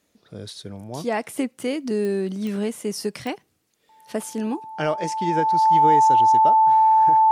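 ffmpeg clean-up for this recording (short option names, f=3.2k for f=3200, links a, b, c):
-af "adeclick=t=4,bandreject=f=880:w=30"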